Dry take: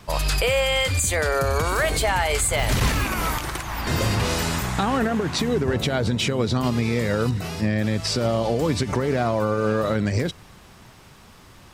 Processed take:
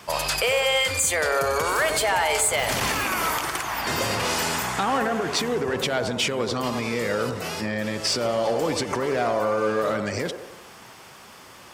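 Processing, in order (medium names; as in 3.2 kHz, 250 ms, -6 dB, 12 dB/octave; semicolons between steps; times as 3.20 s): in parallel at -1.5 dB: compression, threshold -29 dBFS, peak gain reduction 12 dB; on the sum: high-pass 140 Hz 6 dB/octave; band-stop 3.9 kHz, Q 15; on a send: feedback echo behind a band-pass 90 ms, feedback 53%, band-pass 620 Hz, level -6 dB; on the sum: saturation -11 dBFS, distortion -22 dB; bass shelf 290 Hz -10 dB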